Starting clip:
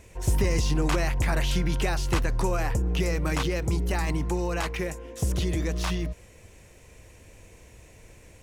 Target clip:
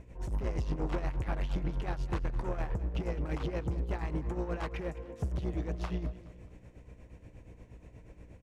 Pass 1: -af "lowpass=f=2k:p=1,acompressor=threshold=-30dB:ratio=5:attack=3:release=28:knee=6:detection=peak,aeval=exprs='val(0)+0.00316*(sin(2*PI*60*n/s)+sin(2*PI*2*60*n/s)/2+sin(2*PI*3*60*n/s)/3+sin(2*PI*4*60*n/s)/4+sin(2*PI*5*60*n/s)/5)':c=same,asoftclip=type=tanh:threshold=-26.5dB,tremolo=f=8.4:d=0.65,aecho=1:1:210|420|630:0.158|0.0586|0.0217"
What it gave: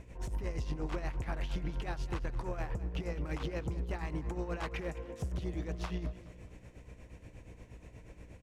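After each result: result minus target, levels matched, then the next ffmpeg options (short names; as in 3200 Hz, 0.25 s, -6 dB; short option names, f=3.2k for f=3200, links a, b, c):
compressor: peak gain reduction +11.5 dB; 2000 Hz band +3.0 dB
-af "lowpass=f=2k:p=1,aeval=exprs='val(0)+0.00316*(sin(2*PI*60*n/s)+sin(2*PI*2*60*n/s)/2+sin(2*PI*3*60*n/s)/3+sin(2*PI*4*60*n/s)/4+sin(2*PI*5*60*n/s)/5)':c=same,asoftclip=type=tanh:threshold=-26.5dB,tremolo=f=8.4:d=0.65,aecho=1:1:210|420|630:0.158|0.0586|0.0217"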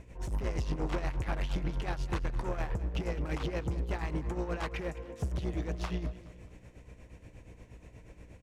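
2000 Hz band +3.0 dB
-af "lowpass=f=990:p=1,aeval=exprs='val(0)+0.00316*(sin(2*PI*60*n/s)+sin(2*PI*2*60*n/s)/2+sin(2*PI*3*60*n/s)/3+sin(2*PI*4*60*n/s)/4+sin(2*PI*5*60*n/s)/5)':c=same,asoftclip=type=tanh:threshold=-26.5dB,tremolo=f=8.4:d=0.65,aecho=1:1:210|420|630:0.158|0.0586|0.0217"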